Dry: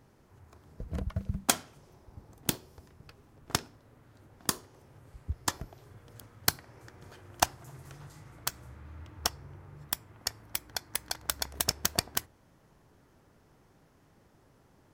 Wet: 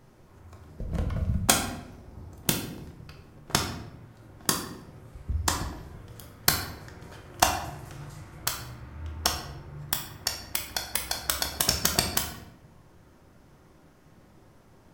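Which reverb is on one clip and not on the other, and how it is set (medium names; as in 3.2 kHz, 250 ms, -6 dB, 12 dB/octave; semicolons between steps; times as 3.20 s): simulated room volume 250 m³, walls mixed, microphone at 0.96 m; trim +3.5 dB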